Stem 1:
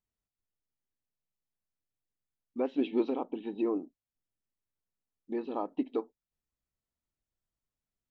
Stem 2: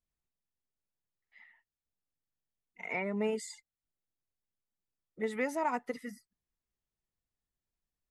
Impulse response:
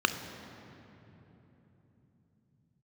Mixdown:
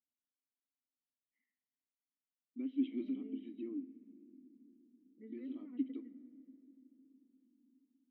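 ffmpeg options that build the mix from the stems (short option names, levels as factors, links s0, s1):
-filter_complex "[0:a]equalizer=f=470:t=o:w=0.37:g=-12,volume=0.794,asplit=3[s0][s1][s2];[s1]volume=0.0944[s3];[1:a]lowpass=1000,volume=0.473,asplit=2[s4][s5];[s5]volume=0.133[s6];[s2]apad=whole_len=357406[s7];[s4][s7]sidechaincompress=threshold=0.0126:ratio=8:attack=16:release=109[s8];[2:a]atrim=start_sample=2205[s9];[s3][s6]amix=inputs=2:normalize=0[s10];[s10][s9]afir=irnorm=-1:irlink=0[s11];[s0][s8][s11]amix=inputs=3:normalize=0,asplit=3[s12][s13][s14];[s12]bandpass=f=270:t=q:w=8,volume=1[s15];[s13]bandpass=f=2290:t=q:w=8,volume=0.501[s16];[s14]bandpass=f=3010:t=q:w=8,volume=0.355[s17];[s15][s16][s17]amix=inputs=3:normalize=0"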